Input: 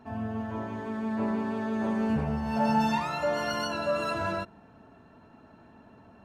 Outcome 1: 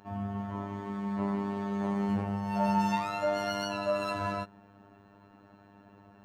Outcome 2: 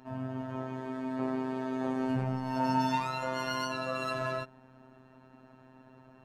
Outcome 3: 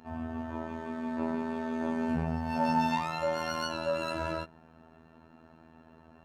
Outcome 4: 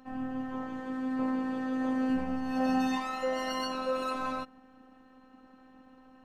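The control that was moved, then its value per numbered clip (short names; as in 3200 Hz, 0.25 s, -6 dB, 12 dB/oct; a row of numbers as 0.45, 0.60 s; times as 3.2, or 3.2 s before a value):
robotiser, frequency: 100, 130, 81, 260 Hz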